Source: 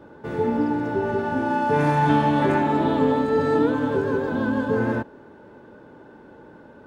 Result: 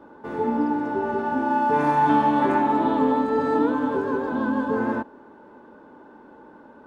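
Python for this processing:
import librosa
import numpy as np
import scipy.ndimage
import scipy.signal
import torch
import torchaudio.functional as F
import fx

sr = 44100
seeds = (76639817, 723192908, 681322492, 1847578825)

y = fx.graphic_eq(x, sr, hz=(125, 250, 1000), db=(-9, 7, 9))
y = F.gain(torch.from_numpy(y), -5.5).numpy()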